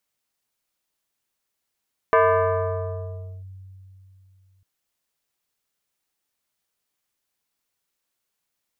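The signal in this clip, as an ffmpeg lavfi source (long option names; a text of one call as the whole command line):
ffmpeg -f lavfi -i "aevalsrc='0.251*pow(10,-3*t/3.24)*sin(2*PI*95*t+2.4*clip(1-t/1.31,0,1)*sin(2*PI*5.78*95*t))':duration=2.5:sample_rate=44100" out.wav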